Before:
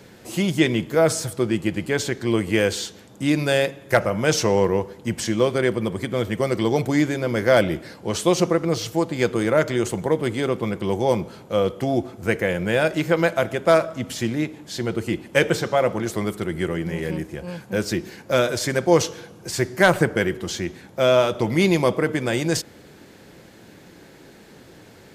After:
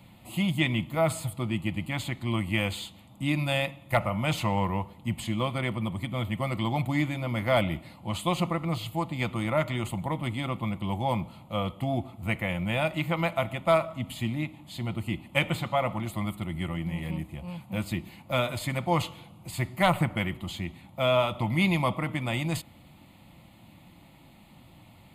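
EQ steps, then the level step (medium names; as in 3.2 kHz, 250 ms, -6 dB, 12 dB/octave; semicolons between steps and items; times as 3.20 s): dynamic bell 1.6 kHz, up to +5 dB, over -33 dBFS, Q 1.1; bass shelf 230 Hz +4 dB; static phaser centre 1.6 kHz, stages 6; -4.0 dB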